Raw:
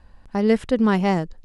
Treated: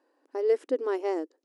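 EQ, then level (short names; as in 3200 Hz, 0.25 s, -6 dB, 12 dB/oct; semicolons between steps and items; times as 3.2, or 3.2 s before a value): brick-wall FIR high-pass 270 Hz; band shelf 1600 Hz -9.5 dB 3 oct; high shelf 3200 Hz -11.5 dB; -1.5 dB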